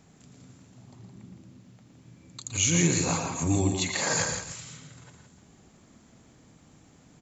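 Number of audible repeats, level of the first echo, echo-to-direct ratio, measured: 4, -17.5 dB, -4.0 dB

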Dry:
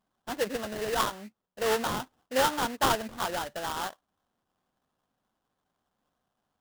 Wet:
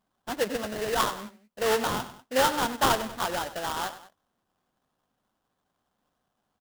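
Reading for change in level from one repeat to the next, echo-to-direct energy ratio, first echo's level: -6.0 dB, -13.0 dB, -14.0 dB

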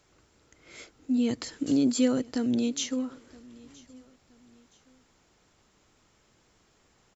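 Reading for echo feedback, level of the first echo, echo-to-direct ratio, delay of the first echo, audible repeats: 37%, -23.5 dB, -23.0 dB, 971 ms, 2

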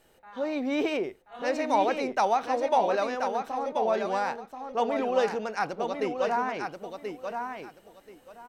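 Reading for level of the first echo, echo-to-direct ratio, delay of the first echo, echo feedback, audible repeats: -6.0 dB, -6.0 dB, 1032 ms, 20%, 3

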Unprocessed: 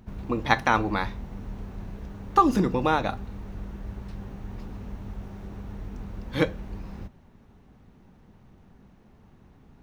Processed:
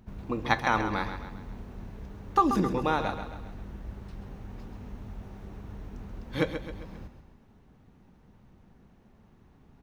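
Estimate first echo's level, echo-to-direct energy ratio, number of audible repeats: -9.0 dB, -8.0 dB, 4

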